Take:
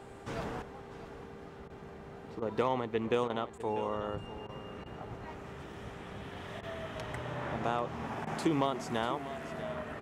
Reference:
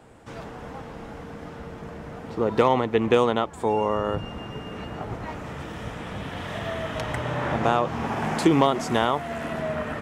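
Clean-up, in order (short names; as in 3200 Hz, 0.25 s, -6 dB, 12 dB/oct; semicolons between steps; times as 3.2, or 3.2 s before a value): de-hum 396.5 Hz, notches 11; interpolate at 1.68/2.4/3.28/3.58/4.47/4.84/6.61/8.25, 18 ms; inverse comb 0.644 s -14 dB; gain 0 dB, from 0.62 s +11 dB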